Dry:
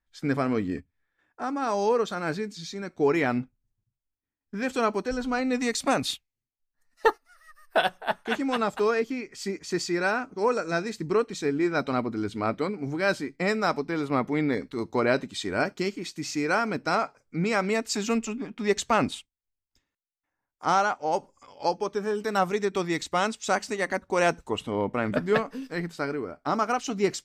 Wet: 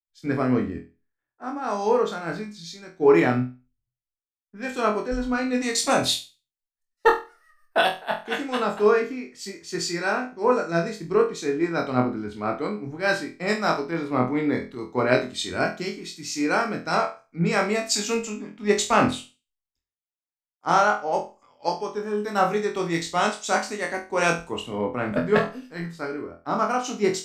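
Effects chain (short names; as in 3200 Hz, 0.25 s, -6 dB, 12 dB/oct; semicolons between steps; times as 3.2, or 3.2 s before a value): on a send: flutter echo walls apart 4.1 m, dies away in 0.36 s; on the sum: three-band expander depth 70%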